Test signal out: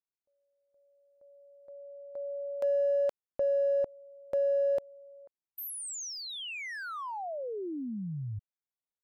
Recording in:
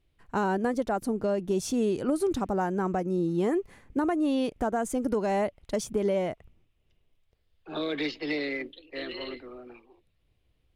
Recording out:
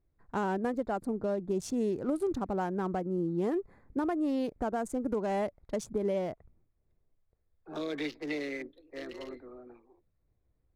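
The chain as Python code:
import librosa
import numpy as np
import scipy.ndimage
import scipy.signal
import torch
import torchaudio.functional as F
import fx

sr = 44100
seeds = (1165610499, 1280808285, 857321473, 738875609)

y = fx.wiener(x, sr, points=15)
y = y * librosa.db_to_amplitude(-4.0)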